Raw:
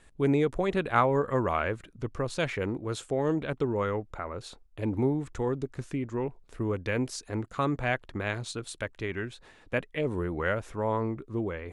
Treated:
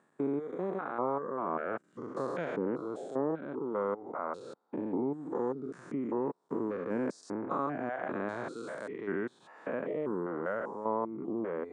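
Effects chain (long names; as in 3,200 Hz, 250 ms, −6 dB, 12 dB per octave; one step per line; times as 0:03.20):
spectrum averaged block by block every 200 ms
high-pass filter 190 Hz 24 dB per octave
reverb reduction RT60 0.55 s
Butterworth low-pass 9,400 Hz 48 dB per octave
high shelf with overshoot 1,800 Hz −13.5 dB, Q 1.5
speech leveller within 5 dB 0.5 s
one half of a high-frequency compander encoder only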